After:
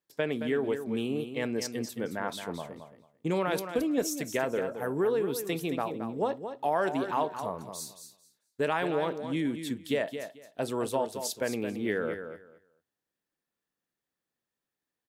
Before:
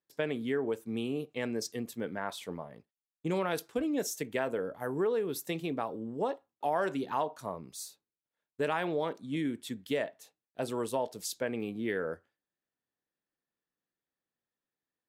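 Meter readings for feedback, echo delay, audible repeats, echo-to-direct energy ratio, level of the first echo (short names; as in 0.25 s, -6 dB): 19%, 0.221 s, 2, -9.0 dB, -9.0 dB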